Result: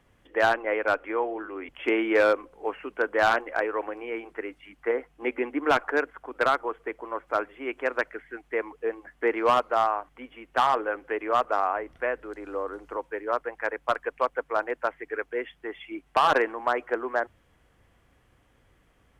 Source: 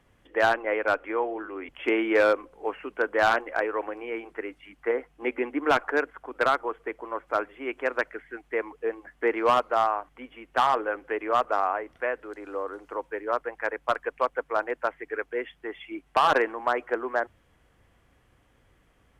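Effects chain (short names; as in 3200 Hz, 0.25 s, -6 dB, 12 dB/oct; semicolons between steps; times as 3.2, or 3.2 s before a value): 11.76–12.97 low shelf 170 Hz +7.5 dB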